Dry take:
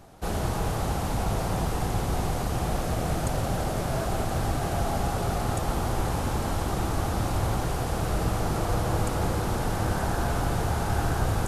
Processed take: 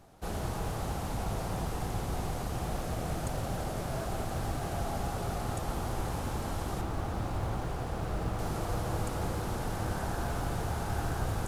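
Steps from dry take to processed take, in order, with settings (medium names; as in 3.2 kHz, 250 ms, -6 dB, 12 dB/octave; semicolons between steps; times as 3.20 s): 6.81–8.39 s: treble shelf 4.5 kHz -9 dB; in parallel at -11 dB: short-mantissa float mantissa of 2-bit; on the sum: trim -9 dB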